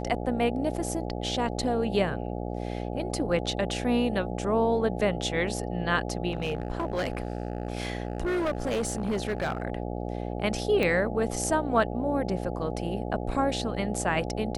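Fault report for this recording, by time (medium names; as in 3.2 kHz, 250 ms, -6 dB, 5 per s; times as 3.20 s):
buzz 60 Hz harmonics 14 -33 dBFS
6.31–9.63 s: clipped -24 dBFS
10.83 s: pop -14 dBFS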